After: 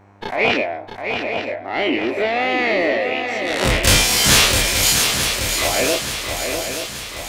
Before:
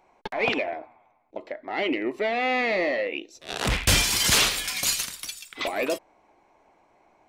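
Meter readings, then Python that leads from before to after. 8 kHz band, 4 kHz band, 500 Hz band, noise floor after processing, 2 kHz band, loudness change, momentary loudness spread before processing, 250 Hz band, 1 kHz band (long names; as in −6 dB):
+8.5 dB, +8.5 dB, +8.0 dB, −34 dBFS, +8.0 dB, +7.0 dB, 17 LU, +8.0 dB, +7.5 dB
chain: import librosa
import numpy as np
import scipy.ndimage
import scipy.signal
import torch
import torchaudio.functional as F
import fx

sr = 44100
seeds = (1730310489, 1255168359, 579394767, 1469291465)

y = fx.spec_dilate(x, sr, span_ms=60)
y = fx.dmg_buzz(y, sr, base_hz=100.0, harmonics=19, level_db=-53.0, tilt_db=-5, odd_only=False)
y = fx.echo_swing(y, sr, ms=878, ratio=3, feedback_pct=55, wet_db=-6.5)
y = F.gain(torch.from_numpy(y), 2.5).numpy()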